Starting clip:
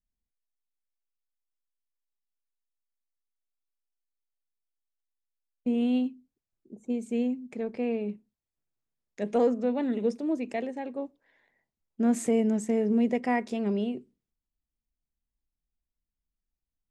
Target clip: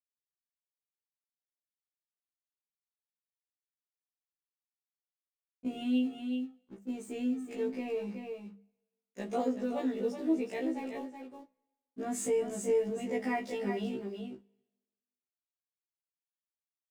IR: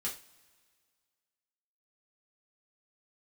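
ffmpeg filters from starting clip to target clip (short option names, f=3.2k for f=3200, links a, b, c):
-filter_complex "[0:a]agate=range=-33dB:threshold=-51dB:ratio=3:detection=peak,aeval=exprs='sgn(val(0))*max(abs(val(0))-0.00178,0)':c=same,highshelf=f=4.9k:g=6,bandreject=f=50:t=h:w=6,bandreject=f=100:t=h:w=6,bandreject=f=150:t=h:w=6,bandreject=f=200:t=h:w=6,aecho=1:1:374:0.376,asplit=2[a][b];[1:a]atrim=start_sample=2205,asetrate=70560,aresample=44100[c];[b][c]afir=irnorm=-1:irlink=0,volume=-4dB[d];[a][d]amix=inputs=2:normalize=0,acompressor=threshold=-33dB:ratio=1.5,afftfilt=real='re*1.73*eq(mod(b,3),0)':imag='im*1.73*eq(mod(b,3),0)':win_size=2048:overlap=0.75"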